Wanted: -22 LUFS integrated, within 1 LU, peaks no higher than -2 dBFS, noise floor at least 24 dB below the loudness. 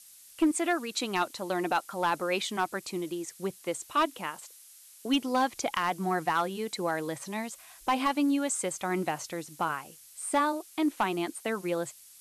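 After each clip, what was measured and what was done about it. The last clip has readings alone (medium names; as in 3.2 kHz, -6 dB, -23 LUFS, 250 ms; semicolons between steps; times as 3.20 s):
clipped samples 0.3%; clipping level -18.5 dBFS; noise floor -54 dBFS; noise floor target -55 dBFS; loudness -30.5 LUFS; peak level -18.5 dBFS; loudness target -22.0 LUFS
-> clip repair -18.5 dBFS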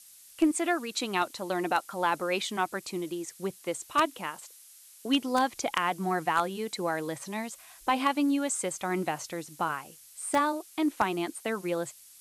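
clipped samples 0.0%; noise floor -54 dBFS; noise floor target -55 dBFS
-> noise reduction 6 dB, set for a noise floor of -54 dBFS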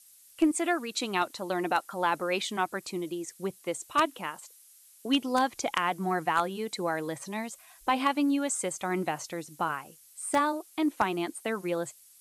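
noise floor -57 dBFS; loudness -30.5 LUFS; peak level -9.5 dBFS; loudness target -22.0 LUFS
-> trim +8.5 dB; peak limiter -2 dBFS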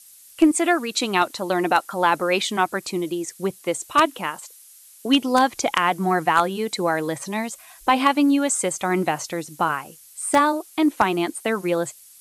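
loudness -22.0 LUFS; peak level -2.0 dBFS; noise floor -48 dBFS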